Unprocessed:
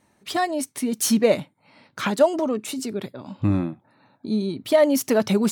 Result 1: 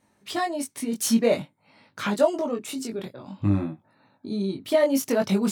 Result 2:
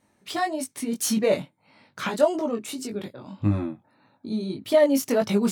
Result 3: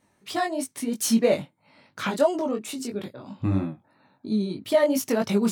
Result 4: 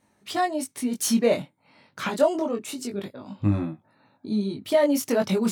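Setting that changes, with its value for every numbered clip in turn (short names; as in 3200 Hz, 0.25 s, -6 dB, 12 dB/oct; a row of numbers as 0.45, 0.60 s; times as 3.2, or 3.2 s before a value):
chorus, rate: 0.51, 1.7, 3, 0.26 Hz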